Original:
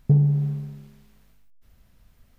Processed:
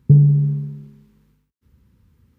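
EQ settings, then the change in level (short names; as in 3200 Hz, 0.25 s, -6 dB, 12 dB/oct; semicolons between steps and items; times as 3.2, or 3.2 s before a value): HPF 64 Hz 24 dB/oct; Butterworth band-stop 660 Hz, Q 2.1; tilt shelf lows +7 dB, about 770 Hz; 0.0 dB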